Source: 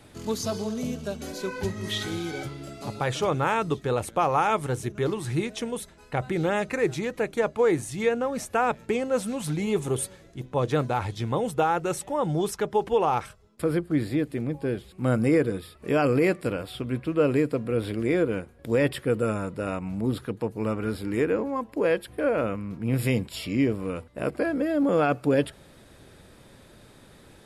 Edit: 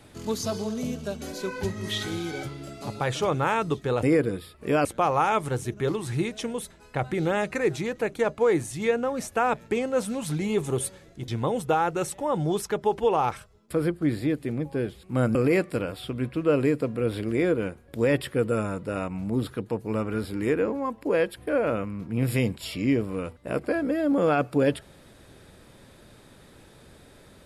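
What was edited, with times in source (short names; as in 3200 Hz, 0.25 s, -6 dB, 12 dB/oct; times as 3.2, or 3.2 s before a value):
10.46–11.17 cut
15.24–16.06 move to 4.03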